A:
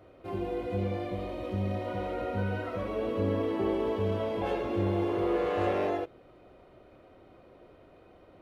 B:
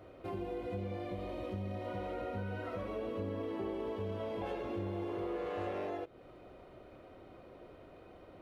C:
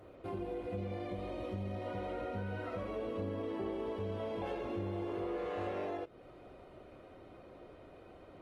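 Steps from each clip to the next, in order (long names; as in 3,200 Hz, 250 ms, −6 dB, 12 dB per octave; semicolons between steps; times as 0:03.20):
downward compressor 3 to 1, threshold −40 dBFS, peak gain reduction 12 dB; level +1 dB
Opus 24 kbit/s 48,000 Hz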